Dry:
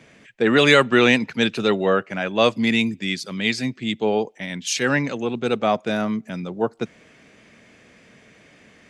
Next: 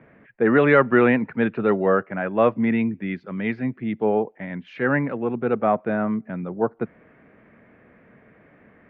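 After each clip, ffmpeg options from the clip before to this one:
-af "lowpass=f=1.8k:w=0.5412,lowpass=f=1.8k:w=1.3066"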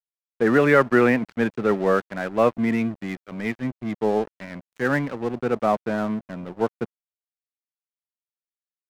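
-af "aeval=exprs='sgn(val(0))*max(abs(val(0))-0.0178,0)':c=same"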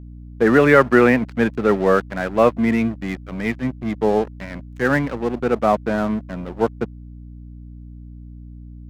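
-af "aeval=exprs='val(0)+0.01*(sin(2*PI*60*n/s)+sin(2*PI*2*60*n/s)/2+sin(2*PI*3*60*n/s)/3+sin(2*PI*4*60*n/s)/4+sin(2*PI*5*60*n/s)/5)':c=same,volume=4dB"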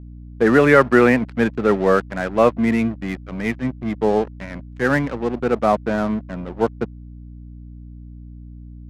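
-af "adynamicsmooth=sensitivity=7.5:basefreq=3.8k"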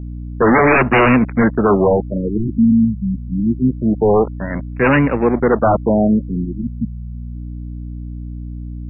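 -af "aeval=exprs='0.891*sin(PI/2*3.98*val(0)/0.891)':c=same,afftfilt=real='re*lt(b*sr/1024,250*pow(2900/250,0.5+0.5*sin(2*PI*0.25*pts/sr)))':imag='im*lt(b*sr/1024,250*pow(2900/250,0.5+0.5*sin(2*PI*0.25*pts/sr)))':win_size=1024:overlap=0.75,volume=-6dB"

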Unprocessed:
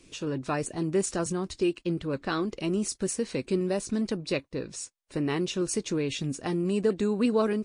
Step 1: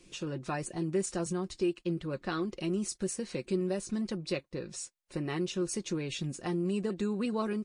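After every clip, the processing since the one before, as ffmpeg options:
-filter_complex "[0:a]aecho=1:1:5.6:0.48,asplit=2[a][b];[b]acompressor=threshold=-33dB:ratio=6,volume=-1.5dB[c];[a][c]amix=inputs=2:normalize=0,volume=-8.5dB"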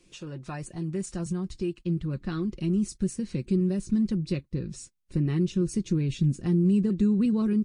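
-af "asubboost=boost=11:cutoff=210,volume=-3dB"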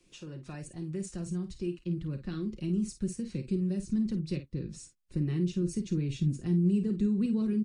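-filter_complex "[0:a]acrossover=split=290|660|1500[a][b][c][d];[c]acompressor=threshold=-59dB:ratio=6[e];[a][b][e][d]amix=inputs=4:normalize=0,aecho=1:1:34|51:0.168|0.299,volume=-5dB"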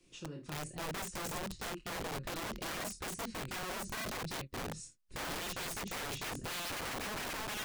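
-af "flanger=delay=22.5:depth=4.2:speed=0.9,aeval=exprs='(mod(75*val(0)+1,2)-1)/75':c=same,volume=2.5dB"

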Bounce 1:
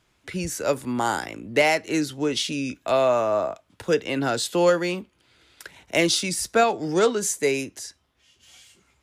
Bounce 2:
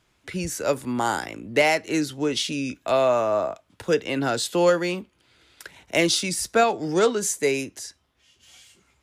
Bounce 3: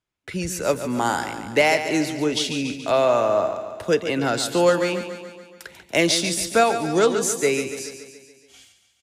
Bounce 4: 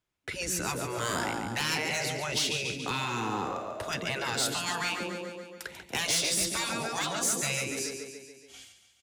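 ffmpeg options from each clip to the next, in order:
-af anull
-filter_complex "[0:a]agate=range=-21dB:threshold=-51dB:ratio=16:detection=peak,asplit=2[a][b];[b]aecho=0:1:142|284|426|568|710|852|994:0.316|0.183|0.106|0.0617|0.0358|0.0208|0.012[c];[a][c]amix=inputs=2:normalize=0,volume=1.5dB"
-af "afftfilt=real='re*lt(hypot(re,im),0.2)':imag='im*lt(hypot(re,im),0.2)':win_size=1024:overlap=0.75,asoftclip=type=tanh:threshold=-21dB"

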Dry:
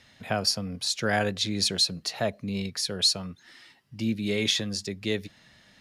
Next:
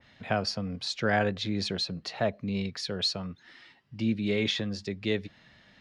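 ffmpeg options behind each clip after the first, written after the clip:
-af "lowpass=3.9k,adynamicequalizer=threshold=0.00794:dfrequency=2200:dqfactor=0.7:tfrequency=2200:tqfactor=0.7:attack=5:release=100:ratio=0.375:range=3:mode=cutabove:tftype=highshelf"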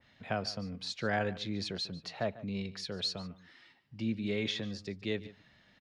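-filter_complex "[0:a]asplit=2[a][b];[b]adelay=145.8,volume=-17dB,highshelf=f=4k:g=-3.28[c];[a][c]amix=inputs=2:normalize=0,volume=-6dB"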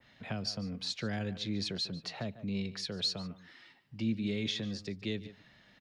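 -filter_complex "[0:a]equalizer=f=76:t=o:w=0.38:g=-7,acrossover=split=300|3000[a][b][c];[b]acompressor=threshold=-45dB:ratio=6[d];[a][d][c]amix=inputs=3:normalize=0,volume=2.5dB"

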